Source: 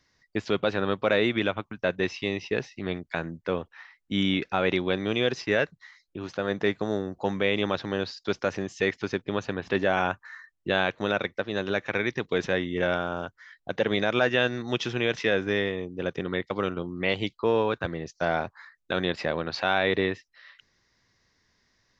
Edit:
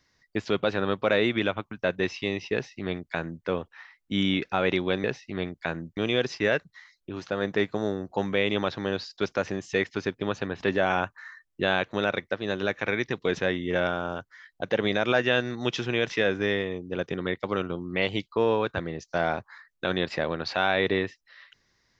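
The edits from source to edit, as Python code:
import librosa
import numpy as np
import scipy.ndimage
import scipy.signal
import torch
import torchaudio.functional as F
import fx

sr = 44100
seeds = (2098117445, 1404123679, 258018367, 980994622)

y = fx.edit(x, sr, fx.duplicate(start_s=2.53, length_s=0.93, to_s=5.04), tone=tone)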